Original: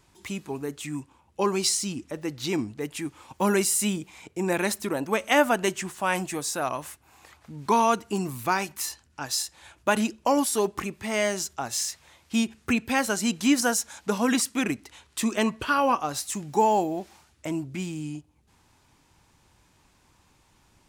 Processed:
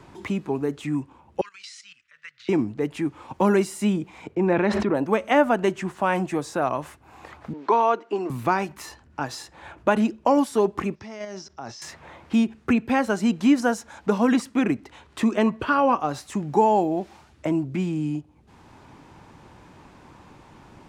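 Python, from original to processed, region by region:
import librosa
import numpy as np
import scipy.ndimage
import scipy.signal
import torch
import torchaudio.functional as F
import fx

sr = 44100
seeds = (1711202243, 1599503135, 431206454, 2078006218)

y = fx.chain(x, sr, fx.cheby2_highpass(hz=830.0, order=4, stop_db=40),
    fx.level_steps(step_db=15),
    fx.air_absorb(metres=81.0), at=(1.41, 2.49))
y = fx.chain(y, sr, fx.lowpass(hz=3200.0, slope=12),
    fx.sustainer(db_per_s=28.0), at=(4.35, 4.95))
y = fx.chain(y, sr, fx.highpass(hz=320.0, slope=24),
    fx.air_absorb(metres=140.0), at=(7.53, 8.3))
y = fx.chain(y, sr, fx.level_steps(step_db=23),
    fx.lowpass_res(hz=5500.0, q=7.2), at=(10.95, 11.82))
y = fx.lowpass(y, sr, hz=1000.0, slope=6)
y = fx.low_shelf(y, sr, hz=79.0, db=-5.5)
y = fx.band_squash(y, sr, depth_pct=40)
y = y * librosa.db_to_amplitude(6.0)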